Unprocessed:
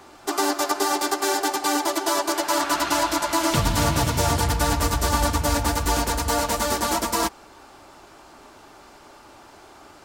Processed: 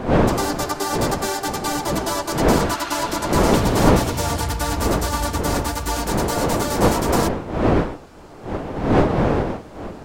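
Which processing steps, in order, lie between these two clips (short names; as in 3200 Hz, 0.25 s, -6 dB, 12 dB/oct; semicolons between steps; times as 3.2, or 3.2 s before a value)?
wind noise 530 Hz -20 dBFS; gain -1.5 dB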